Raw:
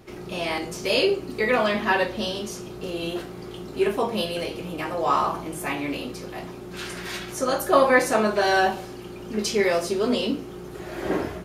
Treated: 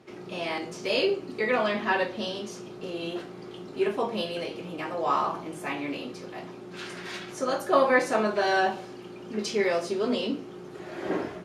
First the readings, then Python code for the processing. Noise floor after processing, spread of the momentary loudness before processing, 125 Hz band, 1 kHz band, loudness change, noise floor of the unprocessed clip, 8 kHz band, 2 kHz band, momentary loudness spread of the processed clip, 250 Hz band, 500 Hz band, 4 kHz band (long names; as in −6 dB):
−43 dBFS, 15 LU, −6.5 dB, −4.0 dB, −4.0 dB, −38 dBFS, −8.5 dB, −4.0 dB, 16 LU, −4.0 dB, −3.5 dB, −5.0 dB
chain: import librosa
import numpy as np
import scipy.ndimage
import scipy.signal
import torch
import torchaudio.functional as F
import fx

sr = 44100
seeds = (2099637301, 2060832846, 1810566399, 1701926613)

y = scipy.signal.sosfilt(scipy.signal.butter(2, 150.0, 'highpass', fs=sr, output='sos'), x)
y = fx.air_absorb(y, sr, metres=55.0)
y = y * 10.0 ** (-3.5 / 20.0)